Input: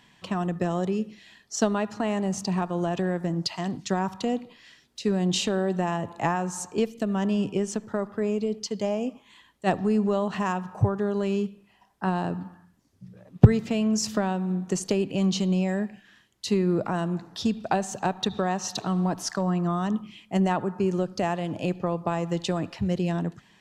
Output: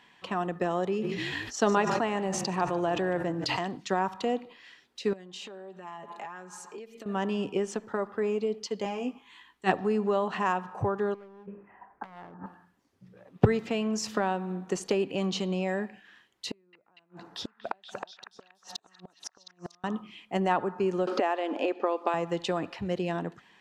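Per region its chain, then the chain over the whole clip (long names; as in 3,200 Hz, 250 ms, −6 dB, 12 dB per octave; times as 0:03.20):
0:00.86–0:03.59: echo with shifted repeats 148 ms, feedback 40%, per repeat −36 Hz, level −15 dB + level that may fall only so fast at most 22 dB per second
0:05.13–0:07.06: comb filter 4.9 ms, depth 69% + downward compressor 20 to 1, threshold −34 dBFS + low-shelf EQ 260 Hz −8 dB
0:08.84–0:09.72: parametric band 570 Hz −14 dB 0.4 octaves + double-tracking delay 16 ms −4.5 dB
0:11.14–0:12.46: Butterworth low-pass 1,900 Hz + hard clipping −27 dBFS + compressor whose output falls as the input rises −38 dBFS, ratio −0.5
0:16.49–0:19.84: gate with flip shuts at −18 dBFS, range −39 dB + echo through a band-pass that steps 238 ms, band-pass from 1,700 Hz, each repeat 0.7 octaves, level −5 dB
0:21.07–0:22.14: linear-phase brick-wall high-pass 220 Hz + high-frequency loss of the air 60 metres + multiband upward and downward compressor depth 100%
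whole clip: bass and treble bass −13 dB, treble −9 dB; notch filter 630 Hz, Q 12; level +1.5 dB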